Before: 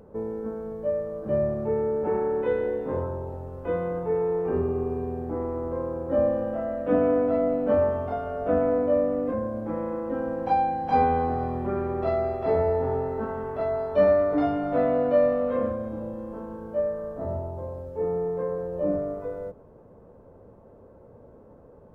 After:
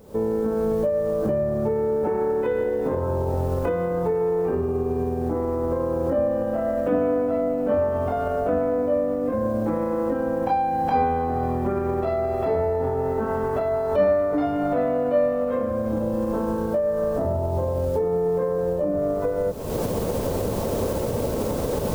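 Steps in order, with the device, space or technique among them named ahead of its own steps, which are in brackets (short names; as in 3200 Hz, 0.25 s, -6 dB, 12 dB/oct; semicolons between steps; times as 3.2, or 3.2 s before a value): cheap recorder with automatic gain (white noise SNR 39 dB; recorder AGC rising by 58 dB/s)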